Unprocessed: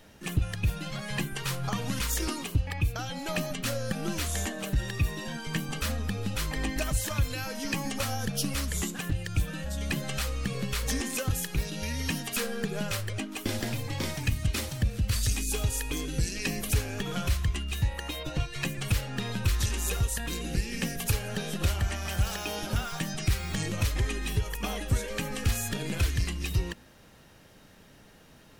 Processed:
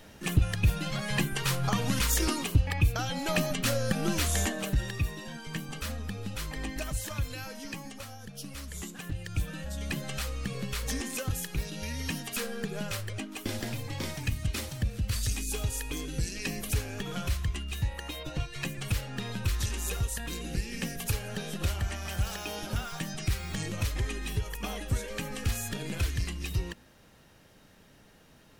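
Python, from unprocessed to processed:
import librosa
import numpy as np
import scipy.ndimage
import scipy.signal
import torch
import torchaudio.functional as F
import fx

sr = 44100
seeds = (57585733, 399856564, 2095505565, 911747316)

y = fx.gain(x, sr, db=fx.line((4.46, 3.0), (5.23, -5.0), (7.44, -5.0), (8.19, -14.0), (9.42, -3.0)))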